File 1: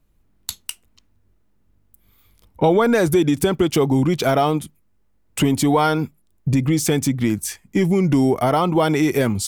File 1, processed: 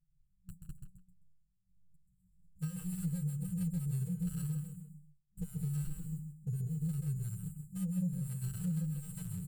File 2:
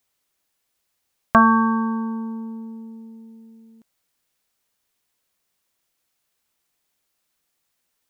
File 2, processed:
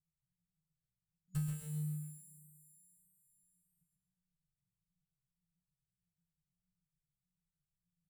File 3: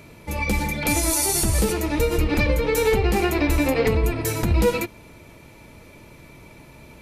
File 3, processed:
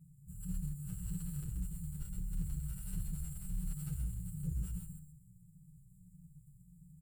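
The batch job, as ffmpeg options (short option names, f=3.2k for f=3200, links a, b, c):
-filter_complex "[0:a]acrusher=samples=31:mix=1:aa=0.000001,lowshelf=f=160:t=q:w=1.5:g=-6,aecho=1:1:6.3:0.51,afftfilt=real='re*(1-between(b*sr/4096,190,6900))':imag='im*(1-between(b*sr/4096,190,6900))':win_size=4096:overlap=0.75,asplit=2[a][b];[b]aecho=0:1:131|262|393|524:0.596|0.191|0.061|0.0195[c];[a][c]amix=inputs=2:normalize=0,acompressor=threshold=-24dB:ratio=16,asoftclip=type=tanh:threshold=-21dB,aemphasis=mode=reproduction:type=cd,asplit=2[d][e];[e]adelay=160,highpass=300,lowpass=3.4k,asoftclip=type=hard:threshold=-31.5dB,volume=-10dB[f];[d][f]amix=inputs=2:normalize=0,asplit=2[g][h];[h]adelay=8.7,afreqshift=-1.6[i];[g][i]amix=inputs=2:normalize=1,volume=-4.5dB"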